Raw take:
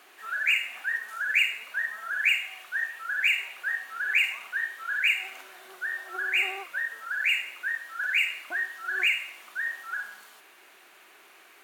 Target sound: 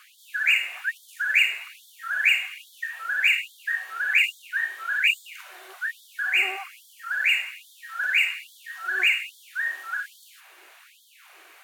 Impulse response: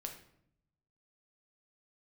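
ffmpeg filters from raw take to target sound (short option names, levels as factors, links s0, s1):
-filter_complex "[0:a]asettb=1/sr,asplit=3[s0][s1][s2];[s0]atrim=end=6.324[s3];[s1]atrim=start=6.32:end=7.12,asetpts=PTS-STARTPTS,afade=t=in:d=0.004:c=qsin,afade=t=out:st=0.796:d=0.004:c=qsin,bandreject=f=3700:w=8.9[s4];[s2]atrim=start=7.116[s5];[s3][s4]acrossfade=d=0.004:c1=hsin:c2=qsin[s6];[s6][s5]acrossfade=d=0.004:c1=qsin:c2=hsin,afftfilt=real='re*gte(b*sr/1024,260*pow(3200/260,0.5+0.5*sin(2*PI*1.2*pts/sr)))':imag='im*gte(b*sr/1024,260*pow(3200/260,0.5+0.5*sin(2*PI*1.2*pts/sr)))':win_size=1024:overlap=0.75,volume=1.5"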